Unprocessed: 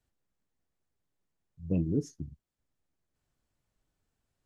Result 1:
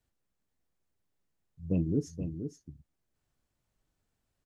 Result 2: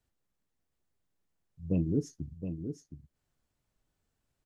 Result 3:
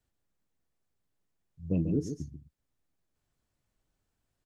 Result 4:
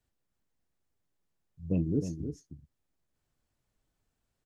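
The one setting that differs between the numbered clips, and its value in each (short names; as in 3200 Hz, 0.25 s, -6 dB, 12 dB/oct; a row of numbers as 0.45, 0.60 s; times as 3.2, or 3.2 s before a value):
echo, time: 0.476, 0.718, 0.14, 0.311 s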